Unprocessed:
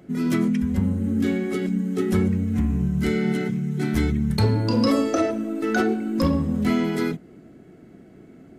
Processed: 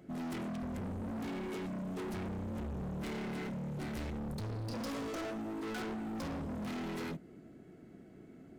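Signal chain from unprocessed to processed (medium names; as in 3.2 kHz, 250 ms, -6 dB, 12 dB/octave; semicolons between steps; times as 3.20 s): 4.18–4.73 s: peaking EQ 3 kHz -> 920 Hz -11.5 dB 2.4 oct; overload inside the chain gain 30.5 dB; trim -7.5 dB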